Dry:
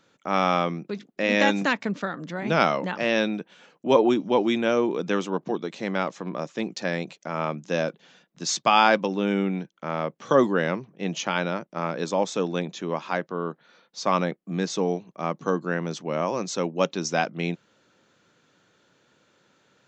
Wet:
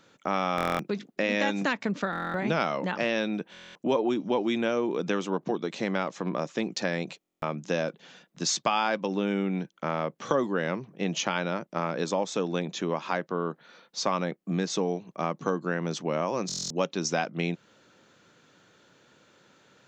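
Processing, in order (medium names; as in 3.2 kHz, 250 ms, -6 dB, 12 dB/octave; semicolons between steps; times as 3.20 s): compression 3:1, threshold -29 dBFS, peak gain reduction 12.5 dB; buffer glitch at 0.56/2.11/3.52/7.19/16.47 s, samples 1024, times 9; trim +3.5 dB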